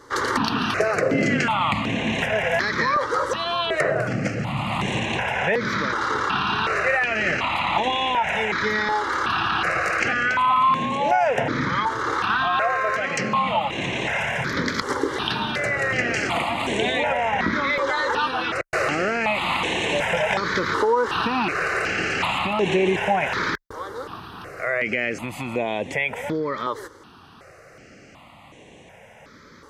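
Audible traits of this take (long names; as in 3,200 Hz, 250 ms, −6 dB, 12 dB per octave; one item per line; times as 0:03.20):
notches that jump at a steady rate 2.7 Hz 690–4,800 Hz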